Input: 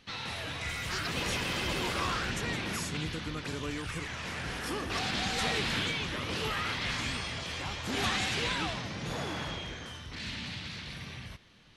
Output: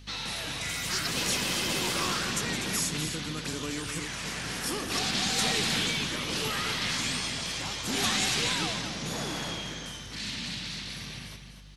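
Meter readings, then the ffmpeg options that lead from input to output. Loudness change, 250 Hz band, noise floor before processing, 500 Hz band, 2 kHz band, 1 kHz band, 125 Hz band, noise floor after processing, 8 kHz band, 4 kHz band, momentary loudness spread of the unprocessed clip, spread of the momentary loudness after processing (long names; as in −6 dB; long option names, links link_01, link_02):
+4.0 dB, +3.0 dB, −45 dBFS, +1.0 dB, +1.5 dB, +0.5 dB, 0.0 dB, −43 dBFS, +10.5 dB, +5.5 dB, 10 LU, 10 LU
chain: -filter_complex "[0:a]highpass=180,aeval=exprs='val(0)+0.00178*(sin(2*PI*50*n/s)+sin(2*PI*2*50*n/s)/2+sin(2*PI*3*50*n/s)/3+sin(2*PI*4*50*n/s)/4+sin(2*PI*5*50*n/s)/5)':channel_layout=same,aeval=exprs='0.112*(cos(1*acos(clip(val(0)/0.112,-1,1)))-cos(1*PI/2))+0.00224*(cos(6*acos(clip(val(0)/0.112,-1,1)))-cos(6*PI/2))+0.001*(cos(8*acos(clip(val(0)/0.112,-1,1)))-cos(8*PI/2))':channel_layout=same,bass=frequency=250:gain=7,treble=frequency=4000:gain=11,asplit=2[link_01][link_02];[link_02]aecho=0:1:246:0.376[link_03];[link_01][link_03]amix=inputs=2:normalize=0"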